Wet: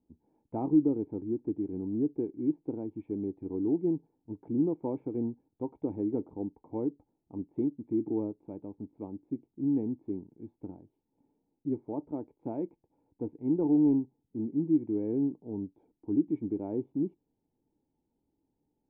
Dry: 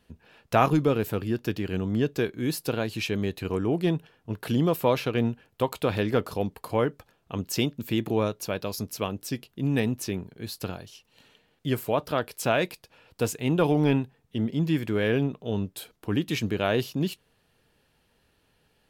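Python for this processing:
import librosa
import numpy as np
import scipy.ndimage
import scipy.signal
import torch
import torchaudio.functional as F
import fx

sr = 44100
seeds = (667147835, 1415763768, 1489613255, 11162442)

y = fx.formant_cascade(x, sr, vowel='u')
y = fx.dynamic_eq(y, sr, hz=380.0, q=1.5, threshold_db=-40.0, ratio=4.0, max_db=4)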